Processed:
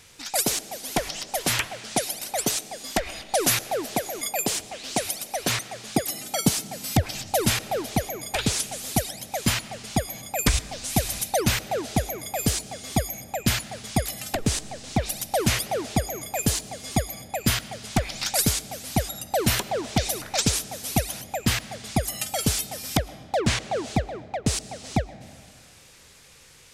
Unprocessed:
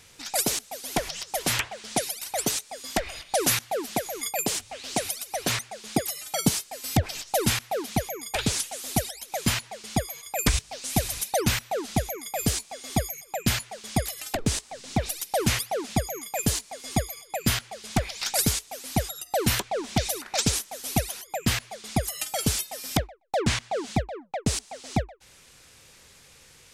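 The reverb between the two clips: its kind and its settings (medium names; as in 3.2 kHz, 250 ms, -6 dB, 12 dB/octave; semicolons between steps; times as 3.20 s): algorithmic reverb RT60 1.9 s, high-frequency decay 0.75×, pre-delay 70 ms, DRR 16 dB; trim +1.5 dB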